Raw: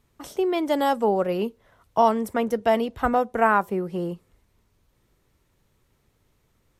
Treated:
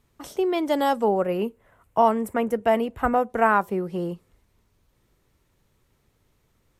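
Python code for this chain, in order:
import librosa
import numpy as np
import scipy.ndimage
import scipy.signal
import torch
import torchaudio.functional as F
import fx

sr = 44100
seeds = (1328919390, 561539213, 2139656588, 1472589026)

y = fx.band_shelf(x, sr, hz=4500.0, db=-8.5, octaves=1.1, at=(1.08, 3.3))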